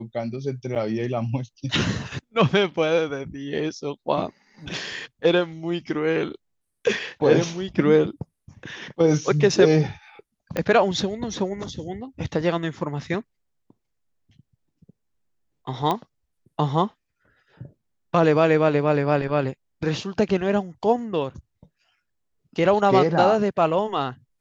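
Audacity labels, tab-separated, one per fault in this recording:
0.750000	0.760000	dropout 8.2 ms
10.570000	10.570000	pop -11 dBFS
15.910000	15.910000	pop -11 dBFS

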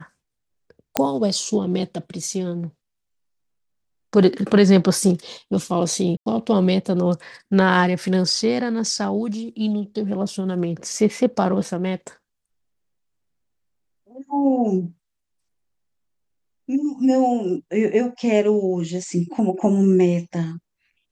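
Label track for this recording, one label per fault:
0.970000	0.970000	pop -2 dBFS
6.170000	6.260000	dropout 92 ms

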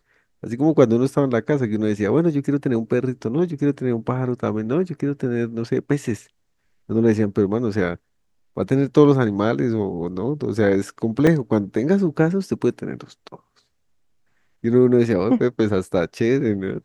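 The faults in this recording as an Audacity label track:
11.270000	11.270000	dropout 2.5 ms

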